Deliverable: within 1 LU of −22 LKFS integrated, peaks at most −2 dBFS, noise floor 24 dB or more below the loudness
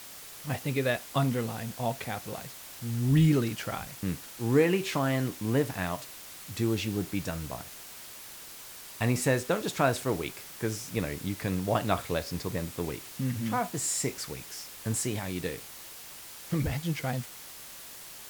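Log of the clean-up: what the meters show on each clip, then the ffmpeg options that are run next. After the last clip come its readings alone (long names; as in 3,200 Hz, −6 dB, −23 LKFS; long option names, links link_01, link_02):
background noise floor −46 dBFS; target noise floor −55 dBFS; integrated loudness −30.5 LKFS; sample peak −11.0 dBFS; target loudness −22.0 LKFS
→ -af "afftdn=noise_reduction=9:noise_floor=-46"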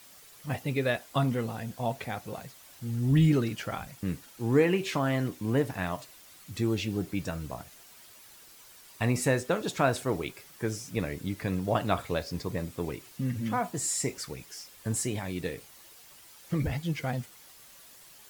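background noise floor −53 dBFS; target noise floor −55 dBFS
→ -af "afftdn=noise_reduction=6:noise_floor=-53"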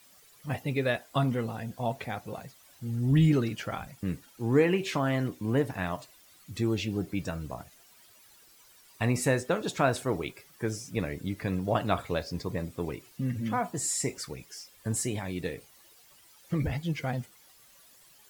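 background noise floor −58 dBFS; integrated loudness −30.5 LKFS; sample peak −11.0 dBFS; target loudness −22.0 LKFS
→ -af "volume=8.5dB"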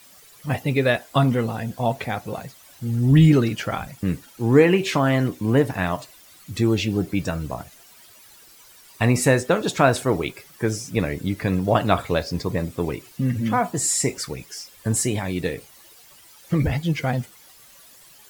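integrated loudness −22.0 LKFS; sample peak −2.5 dBFS; background noise floor −50 dBFS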